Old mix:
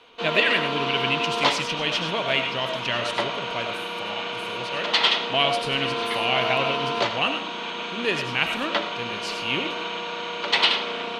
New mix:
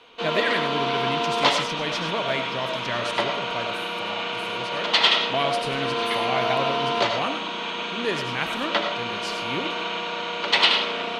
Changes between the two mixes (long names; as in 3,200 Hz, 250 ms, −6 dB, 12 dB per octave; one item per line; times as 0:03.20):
speech: add parametric band 2,800 Hz −14.5 dB 0.44 octaves
background: send +8.5 dB